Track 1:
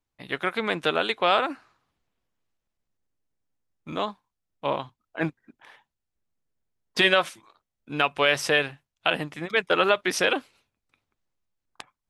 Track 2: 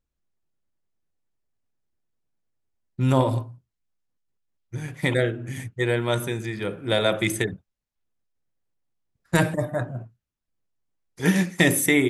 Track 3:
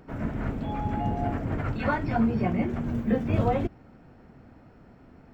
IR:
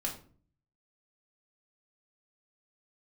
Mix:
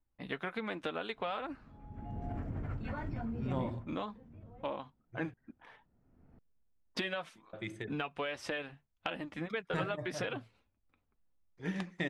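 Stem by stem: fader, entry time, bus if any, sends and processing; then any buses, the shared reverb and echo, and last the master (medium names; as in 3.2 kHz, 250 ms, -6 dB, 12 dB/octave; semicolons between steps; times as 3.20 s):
+0.5 dB, 0.00 s, bus A, no send, low-pass 3.1 kHz 6 dB/octave; flange 1.3 Hz, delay 3.2 ms, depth 1.4 ms, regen -43%
-17.0 dB, 0.40 s, muted 5.34–7.53 s, no bus, no send, low-pass 3.9 kHz 12 dB/octave
-9.5 dB, 1.05 s, bus A, no send, peak limiter -19.5 dBFS, peak gain reduction 7.5 dB; auto duck -20 dB, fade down 0.20 s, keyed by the first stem
bus A: 0.0 dB, bass shelf 160 Hz +8.5 dB; compression 6:1, threshold -35 dBFS, peak gain reduction 15 dB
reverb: none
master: tape noise reduction on one side only decoder only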